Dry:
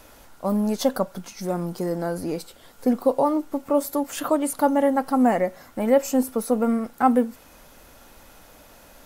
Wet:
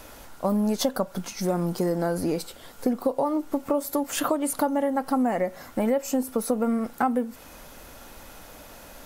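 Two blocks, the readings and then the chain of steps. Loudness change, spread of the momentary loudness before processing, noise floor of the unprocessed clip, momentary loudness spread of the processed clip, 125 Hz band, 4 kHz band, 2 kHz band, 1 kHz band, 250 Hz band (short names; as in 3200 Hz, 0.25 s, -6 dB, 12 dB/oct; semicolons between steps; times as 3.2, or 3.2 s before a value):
-3.0 dB, 9 LU, -50 dBFS, 20 LU, +1.0 dB, +2.0 dB, -1.5 dB, -4.0 dB, -3.0 dB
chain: compressor 6:1, threshold -25 dBFS, peak gain reduction 12 dB; gain +4 dB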